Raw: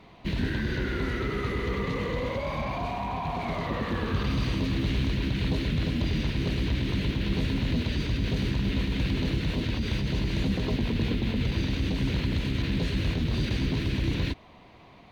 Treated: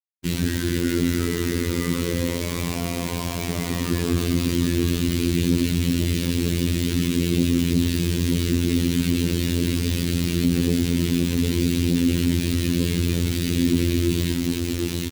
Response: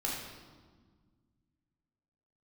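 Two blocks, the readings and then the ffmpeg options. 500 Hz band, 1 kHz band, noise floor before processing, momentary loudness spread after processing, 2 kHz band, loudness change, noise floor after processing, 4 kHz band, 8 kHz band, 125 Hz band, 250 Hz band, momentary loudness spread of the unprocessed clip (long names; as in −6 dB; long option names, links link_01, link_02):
+5.5 dB, −3.0 dB, −52 dBFS, 5 LU, +2.5 dB, +6.0 dB, −27 dBFS, +6.0 dB, can't be measured, +5.0 dB, +8.5 dB, 3 LU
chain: -filter_complex "[0:a]flanger=delay=9.8:depth=3:regen=13:speed=0.31:shape=sinusoidal,aecho=1:1:754:0.473,tremolo=f=34:d=0.621,aresample=16000,asoftclip=type=tanh:threshold=-28.5dB,aresample=44100,acrusher=bits=6:mix=0:aa=0.000001,asplit=2[link_01][link_02];[link_02]highpass=frequency=720:poles=1,volume=13dB,asoftclip=type=tanh:threshold=-29.5dB[link_03];[link_01][link_03]amix=inputs=2:normalize=0,lowpass=frequency=4500:poles=1,volume=-6dB,lowshelf=frequency=480:width_type=q:width=1.5:gain=13.5,crystalizer=i=4:c=0,afftfilt=real='hypot(re,im)*cos(PI*b)':imag='0':win_size=2048:overlap=0.75,acontrast=35"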